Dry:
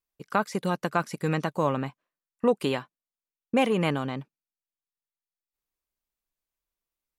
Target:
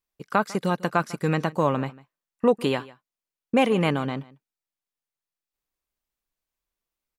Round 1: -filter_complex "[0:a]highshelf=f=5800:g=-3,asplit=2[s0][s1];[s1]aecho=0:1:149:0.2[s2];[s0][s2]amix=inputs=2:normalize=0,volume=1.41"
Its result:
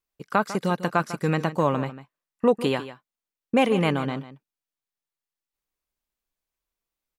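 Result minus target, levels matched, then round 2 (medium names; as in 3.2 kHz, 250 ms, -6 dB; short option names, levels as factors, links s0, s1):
echo-to-direct +7 dB
-filter_complex "[0:a]highshelf=f=5800:g=-3,asplit=2[s0][s1];[s1]aecho=0:1:149:0.0891[s2];[s0][s2]amix=inputs=2:normalize=0,volume=1.41"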